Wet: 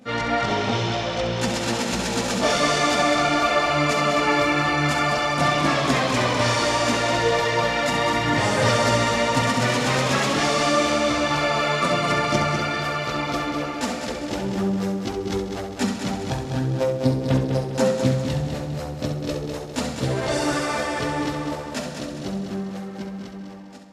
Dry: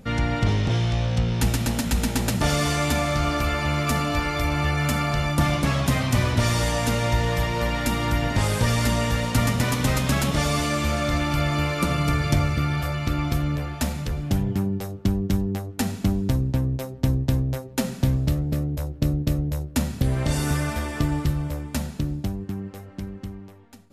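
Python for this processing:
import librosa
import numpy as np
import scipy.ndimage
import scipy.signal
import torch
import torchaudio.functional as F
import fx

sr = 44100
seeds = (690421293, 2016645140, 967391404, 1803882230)

p1 = scipy.signal.sosfilt(scipy.signal.butter(2, 110.0, 'highpass', fs=sr, output='sos'), x)
p2 = fx.bass_treble(p1, sr, bass_db=-14, treble_db=14)
p3 = 10.0 ** (-18.5 / 20.0) * np.tanh(p2 / 10.0 ** (-18.5 / 20.0))
p4 = p2 + F.gain(torch.from_numpy(p3), -3.0).numpy()
p5 = fx.chorus_voices(p4, sr, voices=6, hz=0.48, base_ms=20, depth_ms=4.9, mix_pct=65)
p6 = fx.spacing_loss(p5, sr, db_at_10k=27)
p7 = p6 + fx.echo_heads(p6, sr, ms=67, heads='first and third', feedback_pct=65, wet_db=-8, dry=0)
y = F.gain(torch.from_numpy(p7), 6.0).numpy()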